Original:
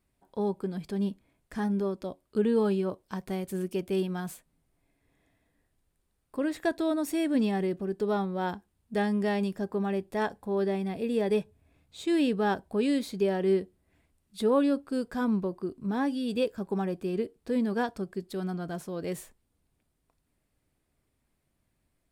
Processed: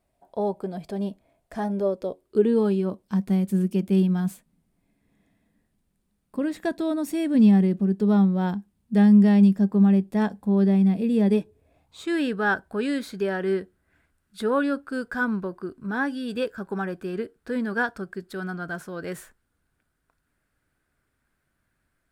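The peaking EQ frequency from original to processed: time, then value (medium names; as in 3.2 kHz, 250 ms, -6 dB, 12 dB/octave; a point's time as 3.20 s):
peaking EQ +15 dB 0.56 oct
1.70 s 660 Hz
3.02 s 200 Hz
11.27 s 200 Hz
12.10 s 1.5 kHz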